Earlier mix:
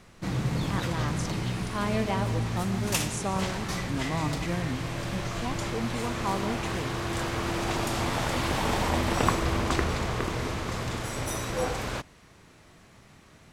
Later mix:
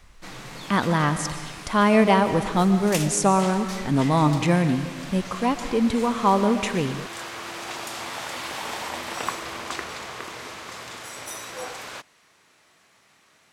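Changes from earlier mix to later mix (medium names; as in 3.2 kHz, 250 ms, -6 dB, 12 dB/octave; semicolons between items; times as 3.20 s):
speech +12.0 dB; background: add high-pass 1 kHz 6 dB/octave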